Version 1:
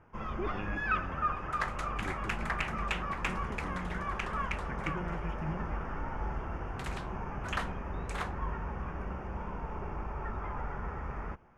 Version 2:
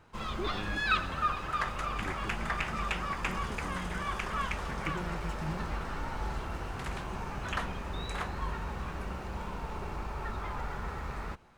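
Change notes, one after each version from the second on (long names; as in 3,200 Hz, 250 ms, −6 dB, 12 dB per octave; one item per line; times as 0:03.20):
first sound: remove moving average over 11 samples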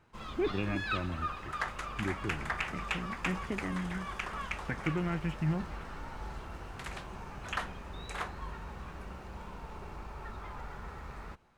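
speech +7.0 dB
first sound −6.5 dB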